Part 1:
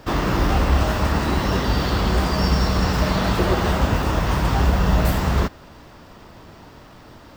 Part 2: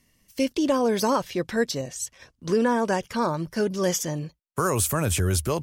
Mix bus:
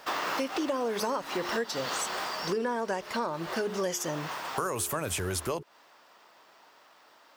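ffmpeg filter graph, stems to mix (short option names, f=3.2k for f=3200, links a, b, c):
-filter_complex "[0:a]highpass=710,volume=-1dB,afade=t=out:st=1.69:d=0.76:silence=0.398107[a];[1:a]bass=f=250:g=-10,treble=f=4k:g=-3,bandreject=f=70.49:t=h:w=4,bandreject=f=140.98:t=h:w=4,bandreject=f=211.47:t=h:w=4,bandreject=f=281.96:t=h:w=4,bandreject=f=352.45:t=h:w=4,bandreject=f=422.94:t=h:w=4,volume=2dB,asplit=2[b][c];[c]apad=whole_len=324653[d];[a][d]sidechaincompress=threshold=-27dB:ratio=10:attack=11:release=325[e];[e][b]amix=inputs=2:normalize=0,acompressor=threshold=-28dB:ratio=5"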